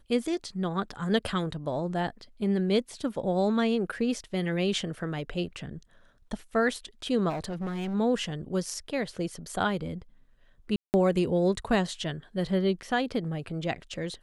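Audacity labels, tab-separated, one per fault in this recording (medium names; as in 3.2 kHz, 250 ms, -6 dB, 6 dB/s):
7.290000	7.950000	clipped -29.5 dBFS
10.760000	10.940000	dropout 179 ms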